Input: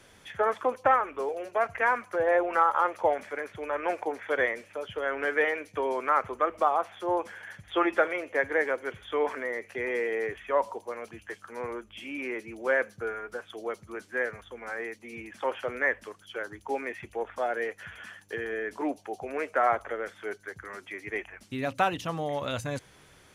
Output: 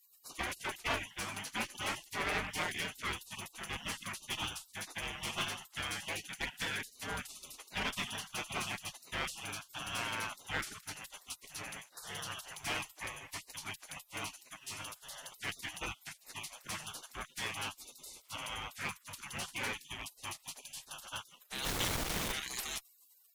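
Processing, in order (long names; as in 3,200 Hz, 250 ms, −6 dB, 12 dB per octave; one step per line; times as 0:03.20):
gate on every frequency bin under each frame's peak −30 dB weak
0:21.64–0:22.31: background noise pink −49 dBFS
asymmetric clip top −52.5 dBFS
level +15.5 dB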